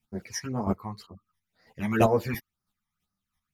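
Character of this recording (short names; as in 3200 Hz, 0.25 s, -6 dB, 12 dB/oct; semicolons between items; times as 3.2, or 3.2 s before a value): phasing stages 12, 2 Hz, lowest notch 440–3000 Hz; chopped level 3 Hz, depth 60%, duty 15%; a shimmering, thickened sound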